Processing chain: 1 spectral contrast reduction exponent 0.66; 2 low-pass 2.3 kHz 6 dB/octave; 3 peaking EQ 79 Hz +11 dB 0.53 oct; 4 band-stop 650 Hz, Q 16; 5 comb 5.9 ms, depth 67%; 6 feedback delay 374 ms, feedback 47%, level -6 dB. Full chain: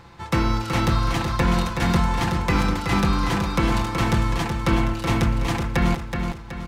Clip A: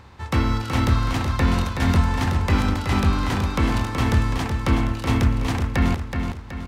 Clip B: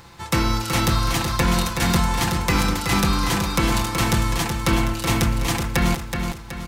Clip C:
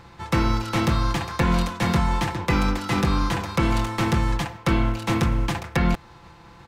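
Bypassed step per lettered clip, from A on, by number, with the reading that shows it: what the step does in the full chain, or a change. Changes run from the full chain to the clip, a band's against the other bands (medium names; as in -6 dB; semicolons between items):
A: 5, 125 Hz band +3.5 dB; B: 2, 8 kHz band +9.5 dB; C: 6, echo-to-direct -5.0 dB to none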